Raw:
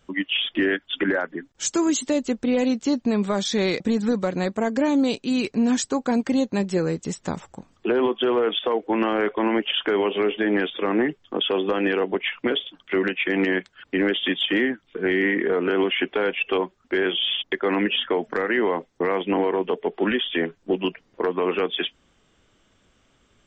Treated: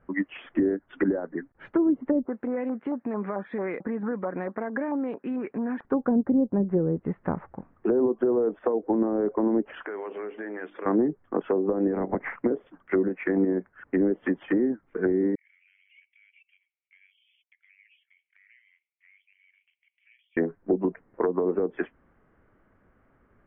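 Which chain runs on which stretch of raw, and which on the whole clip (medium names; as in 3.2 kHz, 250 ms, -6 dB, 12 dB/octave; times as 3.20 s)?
2.25–5.85 s: high-pass 220 Hz + compression 3:1, threshold -28 dBFS + LFO low-pass saw up 4.5 Hz 860–5800 Hz
9.83–10.86 s: compression 5:1, threshold -31 dBFS + tone controls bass -9 dB, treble +10 dB + hum notches 50/100/150/200/250/300/350 Hz
11.93–12.35 s: spectral peaks clipped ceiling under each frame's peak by 20 dB + peaking EQ 2.1 kHz +10 dB 0.35 oct
15.35–20.37 s: rippled Chebyshev high-pass 2.2 kHz, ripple 3 dB + compression 2.5:1, threshold -49 dBFS
whole clip: steep low-pass 1.9 kHz 36 dB/octave; low-pass that closes with the level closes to 480 Hz, closed at -19 dBFS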